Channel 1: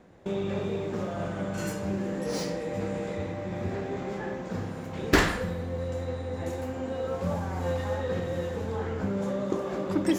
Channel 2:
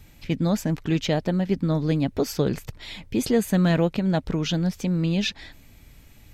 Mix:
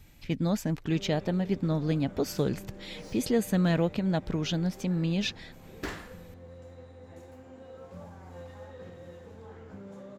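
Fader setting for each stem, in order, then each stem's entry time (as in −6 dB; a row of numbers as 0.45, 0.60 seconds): −15.5, −5.0 decibels; 0.70, 0.00 seconds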